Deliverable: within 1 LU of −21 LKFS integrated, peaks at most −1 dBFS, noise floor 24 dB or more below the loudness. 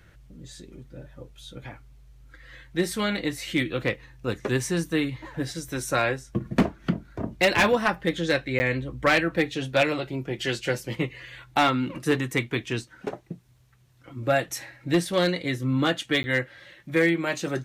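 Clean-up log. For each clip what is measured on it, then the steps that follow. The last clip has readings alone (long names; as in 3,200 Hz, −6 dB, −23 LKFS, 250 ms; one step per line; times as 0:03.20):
share of clipped samples 0.3%; peaks flattened at −13.5 dBFS; number of dropouts 2; longest dropout 10 ms; integrated loudness −26.0 LKFS; sample peak −13.5 dBFS; target loudness −21.0 LKFS
→ clipped peaks rebuilt −13.5 dBFS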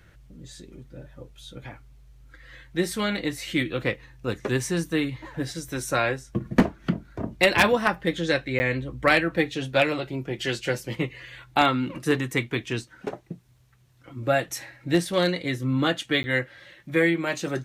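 share of clipped samples 0.0%; number of dropouts 2; longest dropout 10 ms
→ repair the gap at 0:08.59/0:16.23, 10 ms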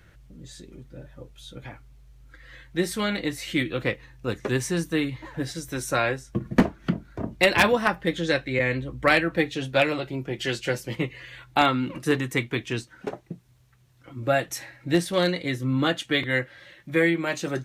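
number of dropouts 0; integrated loudness −25.5 LKFS; sample peak −4.5 dBFS; target loudness −21.0 LKFS
→ level +4.5 dB
brickwall limiter −1 dBFS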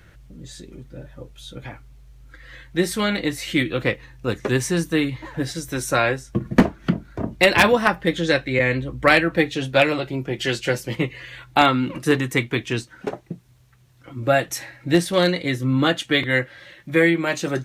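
integrated loudness −21.0 LKFS; sample peak −1.0 dBFS; background noise floor −52 dBFS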